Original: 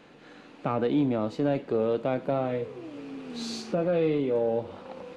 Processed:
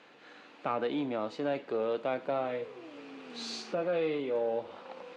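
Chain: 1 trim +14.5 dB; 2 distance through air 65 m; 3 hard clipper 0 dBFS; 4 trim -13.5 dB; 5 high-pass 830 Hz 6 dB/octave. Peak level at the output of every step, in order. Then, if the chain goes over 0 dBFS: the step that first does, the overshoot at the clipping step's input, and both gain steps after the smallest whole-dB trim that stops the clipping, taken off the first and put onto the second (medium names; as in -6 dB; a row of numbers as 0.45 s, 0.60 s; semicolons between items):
-2.5 dBFS, -2.5 dBFS, -2.5 dBFS, -16.0 dBFS, -19.0 dBFS; nothing clips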